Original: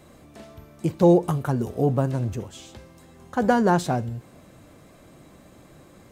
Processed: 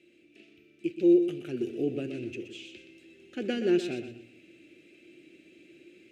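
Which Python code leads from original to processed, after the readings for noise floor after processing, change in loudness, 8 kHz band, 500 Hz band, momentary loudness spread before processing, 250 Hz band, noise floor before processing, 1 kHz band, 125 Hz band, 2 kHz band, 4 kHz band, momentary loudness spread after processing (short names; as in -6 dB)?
-60 dBFS, -6.0 dB, -13.0 dB, -5.5 dB, 16 LU, -4.0 dB, -51 dBFS, -24.5 dB, -19.5 dB, -9.0 dB, -1.5 dB, 20 LU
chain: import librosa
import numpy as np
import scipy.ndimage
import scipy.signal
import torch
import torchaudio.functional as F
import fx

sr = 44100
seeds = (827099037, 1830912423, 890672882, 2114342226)

y = fx.double_bandpass(x, sr, hz=940.0, octaves=2.9)
y = fx.high_shelf(y, sr, hz=2000.0, db=9.0)
y = fx.rider(y, sr, range_db=3, speed_s=0.5)
y = fx.notch(y, sr, hz=1100.0, q=5.9)
y = fx.echo_feedback(y, sr, ms=123, feedback_pct=29, wet_db=-10.0)
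y = y * librosa.db_to_amplitude(1.5)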